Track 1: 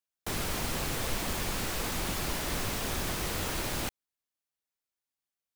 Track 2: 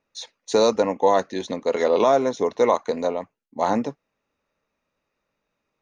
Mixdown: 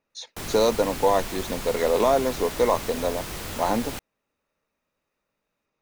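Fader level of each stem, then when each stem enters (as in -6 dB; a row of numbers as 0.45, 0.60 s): -1.0, -2.5 dB; 0.10, 0.00 s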